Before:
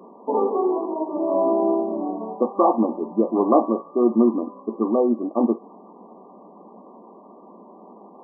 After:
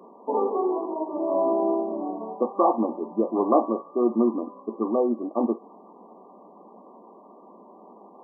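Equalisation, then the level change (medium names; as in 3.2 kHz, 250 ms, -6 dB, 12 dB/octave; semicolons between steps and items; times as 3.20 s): high-pass 250 Hz 6 dB/octave; -2.0 dB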